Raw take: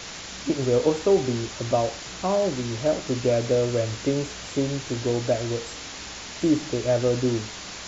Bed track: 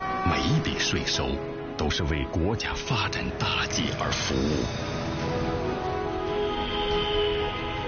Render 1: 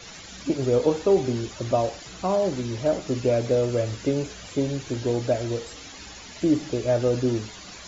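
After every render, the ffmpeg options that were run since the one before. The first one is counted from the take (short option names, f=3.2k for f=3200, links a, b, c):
-af "afftdn=nr=11:nf=-38"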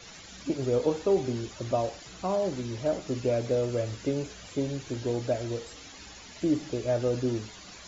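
-af "volume=-5dB"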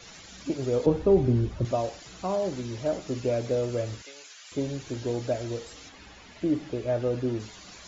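-filter_complex "[0:a]asettb=1/sr,asplit=3[a][b][c];[a]atrim=end=0.864[d];[b]atrim=start=0.86:end=1.65,asetpts=PTS-STARTPTS,afade=t=in:d=0.004:c=qsin,afade=t=out:st=0.786:d=0.004:c=qsin,aemphasis=mode=reproduction:type=riaa[e];[c]atrim=start=1.646[f];[d][e]acrossfade=d=0.004:c1=hsin:c2=qsin[g];[g][f]acrossfade=d=0.004:c1=qsin:c2=hsin,asettb=1/sr,asplit=3[h][i][j];[h]atrim=end=4.024[k];[i]atrim=start=4.02:end=4.52,asetpts=PTS-STARTPTS,afade=t=in:d=0.004:c=qsin,afade=t=out:st=0.496:d=0.004:c=qsin,highpass=1.4k[l];[j]atrim=start=4.516[m];[k][l]acrossfade=d=0.004:c1=hsin:c2=qsin[n];[n][m]acrossfade=d=0.004:c1=qsin:c2=hsin,asettb=1/sr,asplit=3[o][p][q];[o]atrim=end=5.894[r];[p]atrim=start=5.89:end=7.4,asetpts=PTS-STARTPTS,afade=t=in:d=0.004:c=qsin,afade=t=out:st=1.506:d=0.004:c=qsin,acrossover=split=3600[s][t];[t]acompressor=threshold=-59dB:ratio=4:attack=1:release=60[u];[s][u]amix=inputs=2:normalize=0[v];[q]atrim=start=7.396[w];[r][v]acrossfade=d=0.004:c1=hsin:c2=qsin[x];[x][w]acrossfade=d=0.004:c1=qsin:c2=hsin"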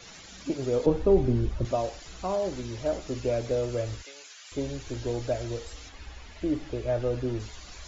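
-af "asubboost=boost=11.5:cutoff=50"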